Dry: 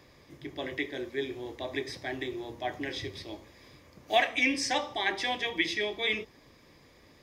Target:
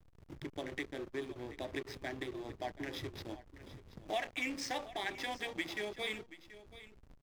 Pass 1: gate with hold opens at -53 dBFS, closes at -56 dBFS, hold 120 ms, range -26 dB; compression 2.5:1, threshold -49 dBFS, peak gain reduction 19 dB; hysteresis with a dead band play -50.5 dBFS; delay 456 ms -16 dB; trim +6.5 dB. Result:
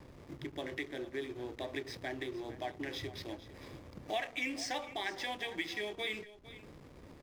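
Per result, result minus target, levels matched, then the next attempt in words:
echo 274 ms early; hysteresis with a dead band: distortion -6 dB
gate with hold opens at -53 dBFS, closes at -56 dBFS, hold 120 ms, range -26 dB; compression 2.5:1, threshold -49 dBFS, peak gain reduction 19 dB; hysteresis with a dead band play -50.5 dBFS; delay 730 ms -16 dB; trim +6.5 dB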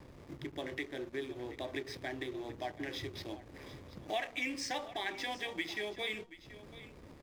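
hysteresis with a dead band: distortion -6 dB
gate with hold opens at -53 dBFS, closes at -56 dBFS, hold 120 ms, range -26 dB; compression 2.5:1, threshold -49 dBFS, peak gain reduction 19 dB; hysteresis with a dead band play -44 dBFS; delay 730 ms -16 dB; trim +6.5 dB

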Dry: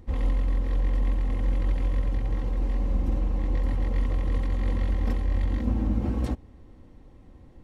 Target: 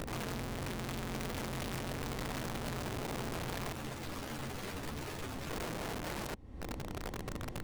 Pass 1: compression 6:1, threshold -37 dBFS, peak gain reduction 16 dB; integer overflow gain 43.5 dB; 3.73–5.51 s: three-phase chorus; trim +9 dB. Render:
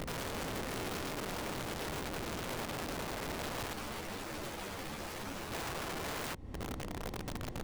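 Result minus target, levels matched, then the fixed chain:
compression: peak gain reduction -5.5 dB
compression 6:1, threshold -43.5 dBFS, peak gain reduction 21.5 dB; integer overflow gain 43.5 dB; 3.73–5.51 s: three-phase chorus; trim +9 dB

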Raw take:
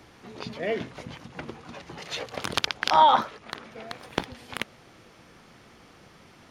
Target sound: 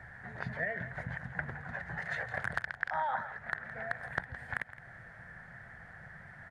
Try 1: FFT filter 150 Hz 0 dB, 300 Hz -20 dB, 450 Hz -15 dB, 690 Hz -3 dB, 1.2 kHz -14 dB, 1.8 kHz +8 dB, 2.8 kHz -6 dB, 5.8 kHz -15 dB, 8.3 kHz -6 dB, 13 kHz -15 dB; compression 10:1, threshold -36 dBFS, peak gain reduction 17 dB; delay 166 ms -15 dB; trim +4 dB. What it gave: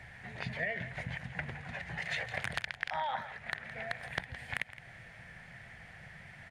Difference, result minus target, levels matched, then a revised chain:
4 kHz band +12.5 dB
FFT filter 150 Hz 0 dB, 300 Hz -20 dB, 450 Hz -15 dB, 690 Hz -3 dB, 1.2 kHz -14 dB, 1.8 kHz +8 dB, 2.8 kHz -6 dB, 5.8 kHz -15 dB, 8.3 kHz -6 dB, 13 kHz -15 dB; compression 10:1, threshold -36 dBFS, peak gain reduction 17 dB; resonant high shelf 2 kHz -8 dB, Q 3; delay 166 ms -15 dB; trim +4 dB

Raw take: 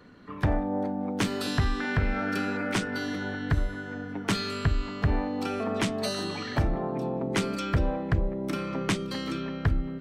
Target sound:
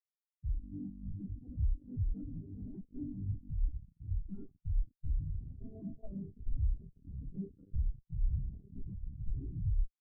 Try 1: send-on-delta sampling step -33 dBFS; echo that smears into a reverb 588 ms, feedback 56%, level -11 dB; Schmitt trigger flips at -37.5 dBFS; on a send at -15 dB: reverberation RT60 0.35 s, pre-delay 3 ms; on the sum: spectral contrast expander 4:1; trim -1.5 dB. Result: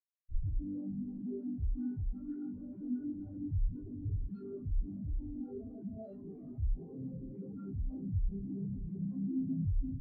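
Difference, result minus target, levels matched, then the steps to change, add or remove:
send-on-delta sampling: distortion -12 dB
change: send-on-delta sampling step -22.5 dBFS

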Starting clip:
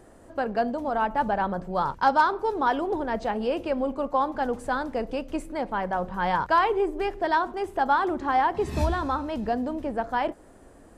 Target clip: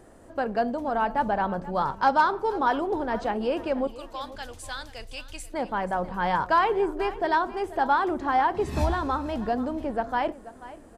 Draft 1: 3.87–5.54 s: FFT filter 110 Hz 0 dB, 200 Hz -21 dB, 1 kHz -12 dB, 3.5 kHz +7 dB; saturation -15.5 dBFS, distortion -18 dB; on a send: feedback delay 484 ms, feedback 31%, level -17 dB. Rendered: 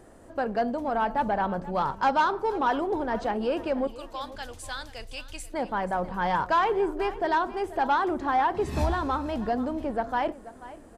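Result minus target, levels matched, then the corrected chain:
saturation: distortion +17 dB
3.87–5.54 s: FFT filter 110 Hz 0 dB, 200 Hz -21 dB, 1 kHz -12 dB, 3.5 kHz +7 dB; saturation -5.5 dBFS, distortion -35 dB; on a send: feedback delay 484 ms, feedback 31%, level -17 dB

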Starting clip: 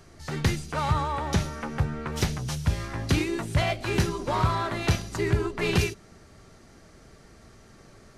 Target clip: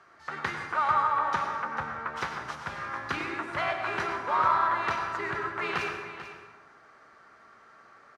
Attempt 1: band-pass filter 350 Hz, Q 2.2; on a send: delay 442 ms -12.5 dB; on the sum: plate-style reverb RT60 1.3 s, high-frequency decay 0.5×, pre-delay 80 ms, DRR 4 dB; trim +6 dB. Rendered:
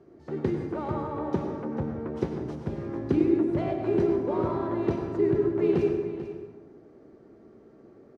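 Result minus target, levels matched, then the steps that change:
250 Hz band +15.5 dB
change: band-pass filter 1.3 kHz, Q 2.2

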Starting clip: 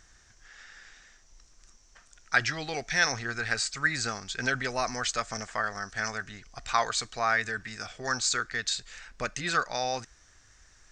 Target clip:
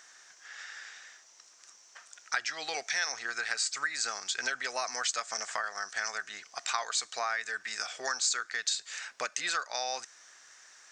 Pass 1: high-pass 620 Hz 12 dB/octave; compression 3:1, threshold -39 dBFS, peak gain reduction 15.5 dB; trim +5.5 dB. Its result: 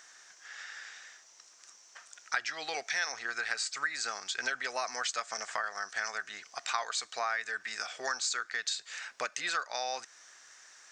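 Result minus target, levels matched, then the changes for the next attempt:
8 kHz band -2.5 dB
add after compression: dynamic bell 7.6 kHz, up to +5 dB, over -56 dBFS, Q 0.77

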